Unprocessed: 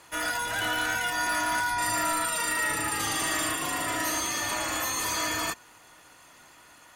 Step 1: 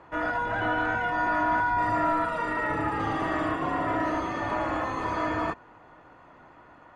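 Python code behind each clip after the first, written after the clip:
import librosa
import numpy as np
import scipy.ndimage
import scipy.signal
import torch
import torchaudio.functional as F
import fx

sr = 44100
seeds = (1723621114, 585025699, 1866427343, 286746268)

y = scipy.signal.sosfilt(scipy.signal.butter(2, 1100.0, 'lowpass', fs=sr, output='sos'), x)
y = y * 10.0 ** (6.5 / 20.0)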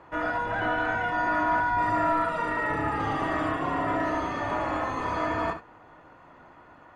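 y = fx.room_early_taps(x, sr, ms=(57, 69), db=(-15.5, -11.0))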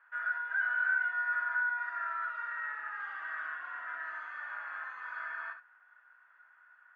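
y = fx.ladder_bandpass(x, sr, hz=1600.0, resonance_pct=85)
y = y * 10.0 ** (-2.5 / 20.0)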